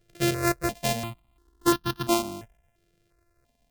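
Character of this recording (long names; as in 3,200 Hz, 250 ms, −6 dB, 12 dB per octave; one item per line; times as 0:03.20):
a buzz of ramps at a fixed pitch in blocks of 128 samples
notches that jump at a steady rate 2.9 Hz 250–2,200 Hz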